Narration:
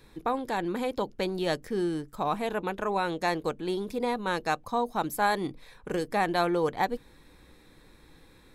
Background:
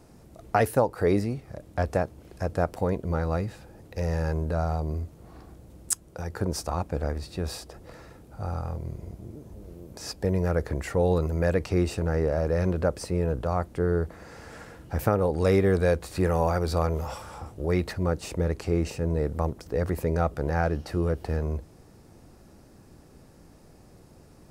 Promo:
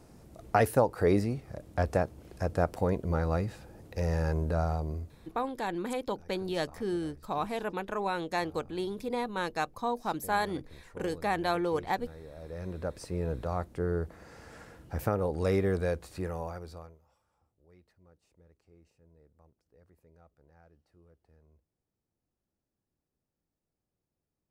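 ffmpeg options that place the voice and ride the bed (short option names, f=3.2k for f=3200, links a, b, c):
-filter_complex "[0:a]adelay=5100,volume=-3.5dB[a];[1:a]volume=14.5dB,afade=t=out:st=4.6:d=0.94:silence=0.0944061,afade=t=in:st=12.34:d=0.96:silence=0.149624,afade=t=out:st=15.63:d=1.36:silence=0.0334965[b];[a][b]amix=inputs=2:normalize=0"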